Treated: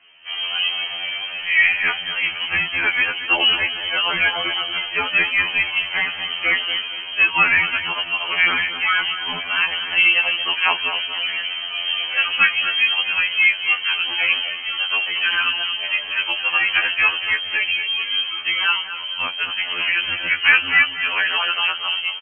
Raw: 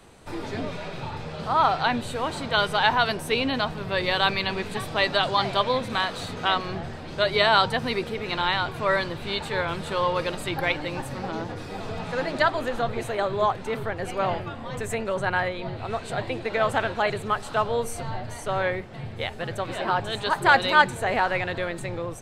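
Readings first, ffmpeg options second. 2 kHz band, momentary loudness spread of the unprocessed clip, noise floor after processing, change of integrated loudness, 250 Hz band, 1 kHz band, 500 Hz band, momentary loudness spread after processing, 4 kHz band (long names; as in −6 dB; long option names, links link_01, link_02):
+10.5 dB, 12 LU, −30 dBFS, +7.5 dB, −9.5 dB, −4.0 dB, −12.0 dB, 8 LU, +11.0 dB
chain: -filter_complex "[0:a]dynaudnorm=framelen=170:gausssize=3:maxgain=7dB,lowpass=frequency=2700:width_type=q:width=0.5098,lowpass=frequency=2700:width_type=q:width=0.6013,lowpass=frequency=2700:width_type=q:width=0.9,lowpass=frequency=2700:width_type=q:width=2.563,afreqshift=-3200,asplit=2[link_01][link_02];[link_02]adelay=233,lowpass=frequency=2000:poles=1,volume=-9.5dB,asplit=2[link_03][link_04];[link_04]adelay=233,lowpass=frequency=2000:poles=1,volume=0.38,asplit=2[link_05][link_06];[link_06]adelay=233,lowpass=frequency=2000:poles=1,volume=0.38,asplit=2[link_07][link_08];[link_08]adelay=233,lowpass=frequency=2000:poles=1,volume=0.38[link_09];[link_03][link_05][link_07][link_09]amix=inputs=4:normalize=0[link_10];[link_01][link_10]amix=inputs=2:normalize=0,afftfilt=real='re*2*eq(mod(b,4),0)':imag='im*2*eq(mod(b,4),0)':win_size=2048:overlap=0.75,volume=1.5dB"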